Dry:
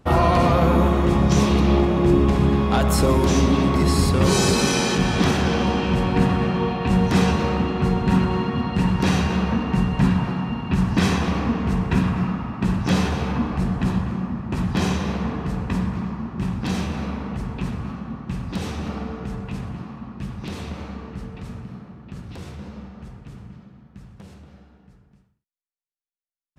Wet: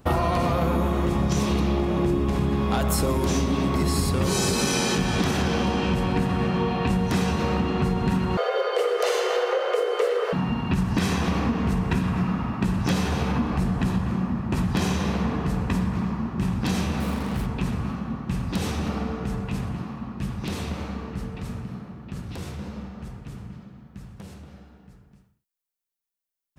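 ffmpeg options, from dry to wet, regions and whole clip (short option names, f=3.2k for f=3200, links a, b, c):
-filter_complex "[0:a]asettb=1/sr,asplit=3[a][b][c];[a]atrim=end=8.374[d];[b]atrim=start=8.37:end=10.33,asetpts=PTS-STARTPTS,afade=t=in:d=0.004:c=qsin,afade=t=out:st=1.956:d=0.004:c=qsin,highpass=110,afreqshift=300[e];[c]atrim=start=10.326[f];[d][e]acrossfade=d=0.004:c1=hsin:c2=qsin[g];[g][f]acrossfade=d=0.004:c1=qsin:c2=hsin,asettb=1/sr,asplit=3[h][i][j];[h]atrim=end=17.004[k];[i]atrim=start=17:end=17.46,asetpts=PTS-STARTPTS,afade=t=in:d=0.004:c=qsin,afade=t=out:st=0.456:d=0.004:c=qsin,acrusher=bits=5:mix=0:aa=0.5,equalizer=f=6.6k:t=o:w=0.96:g=-5[l];[j]atrim=start=17.456[m];[k][l]acrossfade=d=0.004:c1=hsin:c2=qsin[n];[n][m]acrossfade=d=0.004:c1=qsin:c2=hsin,highshelf=f=9.8k:g=10,acompressor=threshold=-21dB:ratio=6,volume=1.5dB"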